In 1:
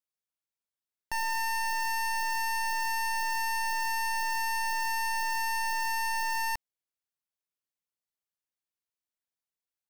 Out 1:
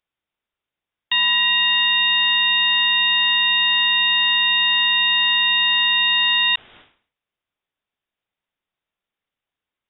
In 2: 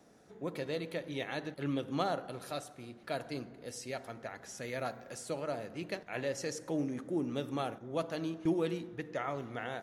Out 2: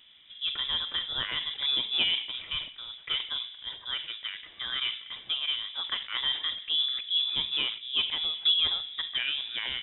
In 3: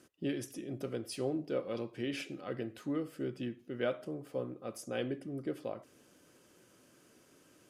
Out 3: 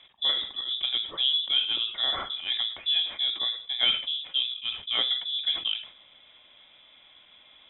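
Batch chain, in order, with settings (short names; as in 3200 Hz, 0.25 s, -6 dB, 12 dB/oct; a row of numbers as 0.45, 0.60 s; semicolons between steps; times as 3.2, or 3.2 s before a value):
inverted band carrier 3700 Hz; sustainer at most 120 dB/s; normalise peaks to -12 dBFS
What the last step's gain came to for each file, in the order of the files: +12.5, +6.0, +9.0 dB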